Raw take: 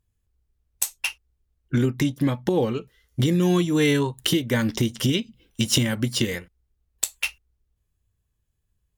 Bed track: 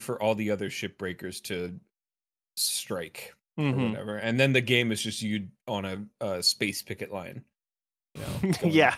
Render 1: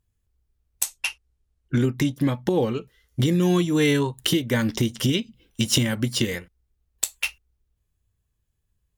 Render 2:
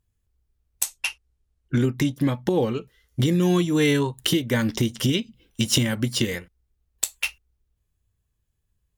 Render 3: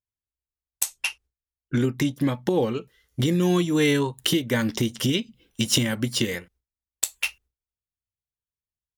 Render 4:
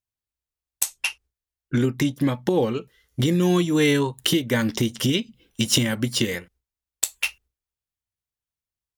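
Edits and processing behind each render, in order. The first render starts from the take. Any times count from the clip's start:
0.83–1.84 LPF 12000 Hz 24 dB/oct
nothing audible
gate with hold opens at -57 dBFS; low shelf 80 Hz -9.5 dB
gain +1.5 dB

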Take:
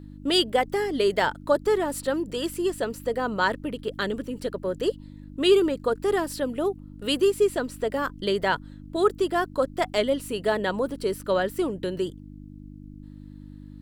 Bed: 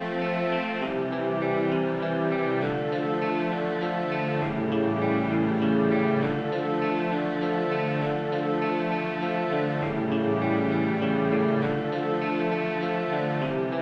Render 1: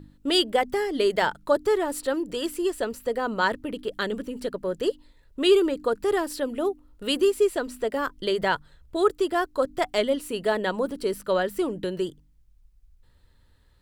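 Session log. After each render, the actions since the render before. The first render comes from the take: de-hum 50 Hz, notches 6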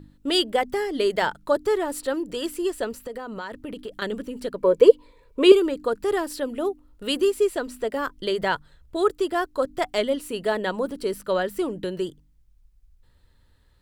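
2.94–4.02 compressor 16:1, threshold -29 dBFS; 4.58–5.52 small resonant body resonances 480/1000/2300 Hz, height 18 dB, ringing for 35 ms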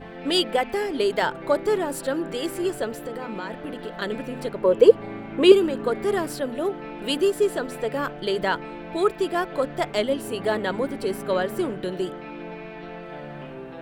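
add bed -10.5 dB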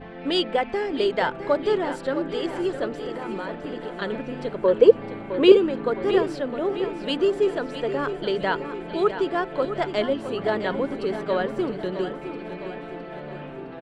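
air absorption 120 m; feedback echo 0.661 s, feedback 53%, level -10.5 dB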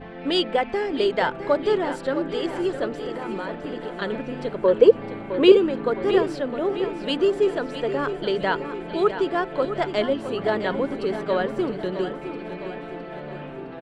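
gain +1 dB; limiter -3 dBFS, peak gain reduction 2.5 dB

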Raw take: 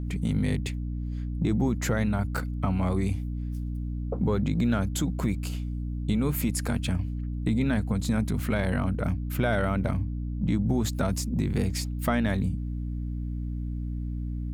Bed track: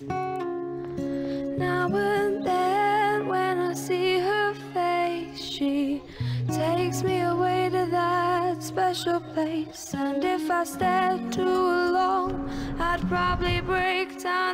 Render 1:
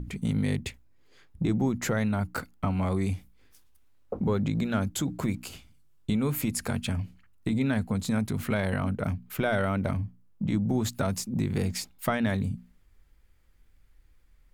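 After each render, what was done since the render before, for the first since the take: notches 60/120/180/240/300 Hz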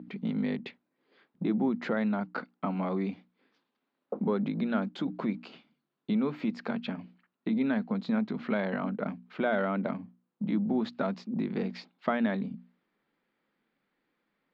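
elliptic band-pass 200–4300 Hz, stop band 40 dB; high shelf 3300 Hz -11 dB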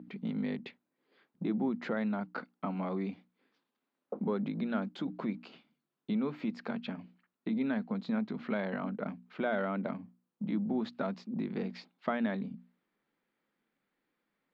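gain -4 dB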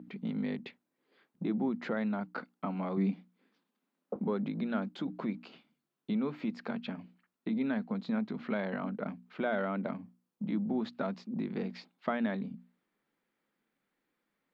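2.97–4.16 resonant low shelf 120 Hz -13.5 dB, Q 3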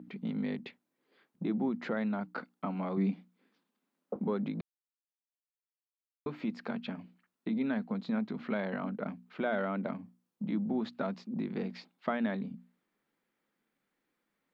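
4.61–6.26 mute

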